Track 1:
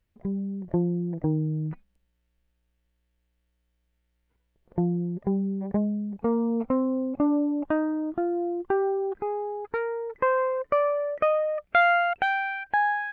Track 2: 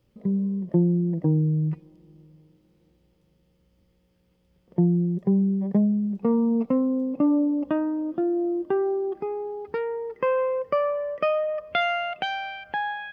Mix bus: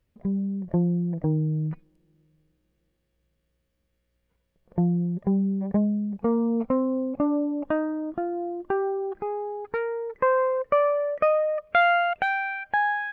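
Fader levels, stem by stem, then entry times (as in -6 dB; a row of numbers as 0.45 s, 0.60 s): +0.5 dB, -12.5 dB; 0.00 s, 0.00 s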